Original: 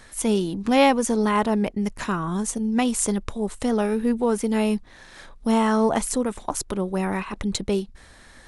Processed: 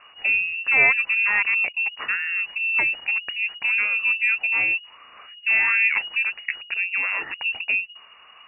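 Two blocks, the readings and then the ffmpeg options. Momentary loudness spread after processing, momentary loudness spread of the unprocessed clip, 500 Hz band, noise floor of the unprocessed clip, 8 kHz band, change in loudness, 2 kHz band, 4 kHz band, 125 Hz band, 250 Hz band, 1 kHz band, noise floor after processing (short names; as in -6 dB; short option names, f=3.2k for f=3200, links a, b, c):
9 LU, 9 LU, -19.0 dB, -49 dBFS, under -40 dB, +3.0 dB, +15.5 dB, +2.0 dB, under -20 dB, under -25 dB, -10.0 dB, -50 dBFS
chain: -af "lowpass=f=2.5k:t=q:w=0.5098,lowpass=f=2.5k:t=q:w=0.6013,lowpass=f=2.5k:t=q:w=0.9,lowpass=f=2.5k:t=q:w=2.563,afreqshift=-2900"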